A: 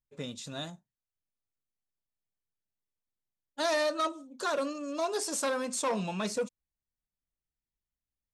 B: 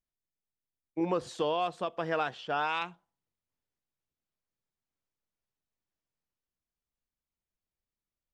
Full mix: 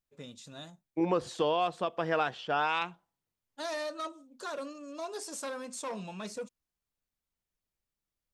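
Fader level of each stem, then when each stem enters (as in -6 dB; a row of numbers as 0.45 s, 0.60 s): -7.5 dB, +1.5 dB; 0.00 s, 0.00 s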